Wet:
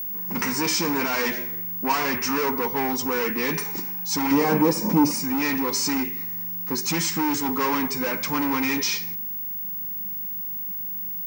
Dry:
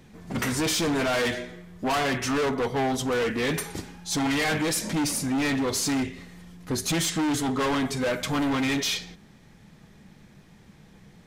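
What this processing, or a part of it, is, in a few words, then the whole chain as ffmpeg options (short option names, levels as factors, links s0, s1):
old television with a line whistle: -filter_complex "[0:a]highpass=f=160:w=0.5412,highpass=f=160:w=1.3066,equalizer=f=190:t=q:w=4:g=4,equalizer=f=660:t=q:w=4:g=-10,equalizer=f=950:t=q:w=4:g=9,equalizer=f=2300:t=q:w=4:g=5,equalizer=f=3400:t=q:w=4:g=-8,equalizer=f=5500:t=q:w=4:g=8,lowpass=f=8600:w=0.5412,lowpass=f=8600:w=1.3066,aeval=exprs='val(0)+0.0398*sin(2*PI*15625*n/s)':c=same,asettb=1/sr,asplit=3[s0][s1][s2];[s0]atrim=end=4.314[s3];[s1]atrim=start=4.31:end=5.11,asetpts=PTS-STARTPTS,afade=t=in:d=0.004:c=qsin,afade=t=out:st=0.796:d=0.004:c=qsin,equalizer=f=125:t=o:w=1:g=6,equalizer=f=250:t=o:w=1:g=6,equalizer=f=500:t=o:w=1:g=8,equalizer=f=1000:t=o:w=1:g=5,equalizer=f=2000:t=o:w=1:g=-8,equalizer=f=4000:t=o:w=1:g=-5,equalizer=f=8000:t=o:w=1:g=-4[s4];[s2]atrim=start=5.106[s5];[s3][s4]acrossfade=d=0.004:c1=hsin:c2=qsin[s6];[s6][s5]acrossfade=d=0.004:c1=qsin:c2=hsin"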